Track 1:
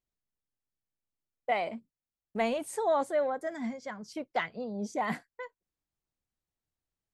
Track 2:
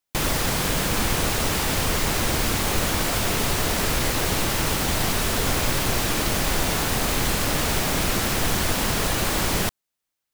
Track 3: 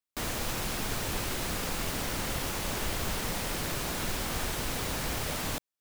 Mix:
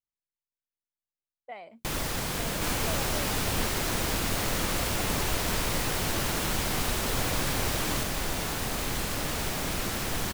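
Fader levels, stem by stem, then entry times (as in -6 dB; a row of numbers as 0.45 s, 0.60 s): -13.0 dB, -8.0 dB, +0.5 dB; 0.00 s, 1.70 s, 2.45 s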